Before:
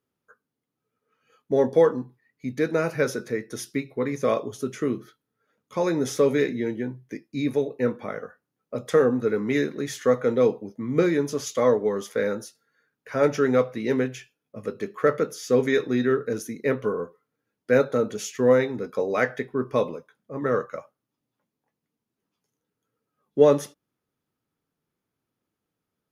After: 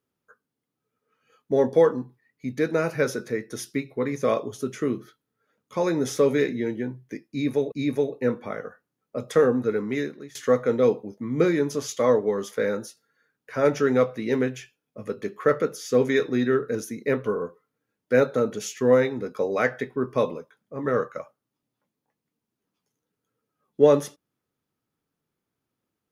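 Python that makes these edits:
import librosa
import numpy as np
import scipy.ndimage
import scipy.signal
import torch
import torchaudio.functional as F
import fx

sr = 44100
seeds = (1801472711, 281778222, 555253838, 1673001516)

y = fx.edit(x, sr, fx.repeat(start_s=7.3, length_s=0.42, count=2),
    fx.fade_out_to(start_s=9.04, length_s=0.89, curve='qsin', floor_db=-20.5), tone=tone)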